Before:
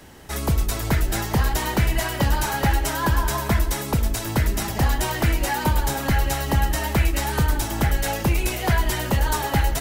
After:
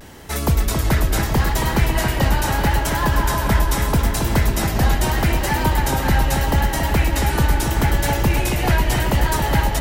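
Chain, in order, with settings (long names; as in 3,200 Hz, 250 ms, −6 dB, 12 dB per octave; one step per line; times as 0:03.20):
pitch vibrato 0.78 Hz 52 cents
speech leveller within 3 dB
on a send: delay with a low-pass on its return 274 ms, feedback 69%, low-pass 3,600 Hz, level −5.5 dB
on the sum: level +2 dB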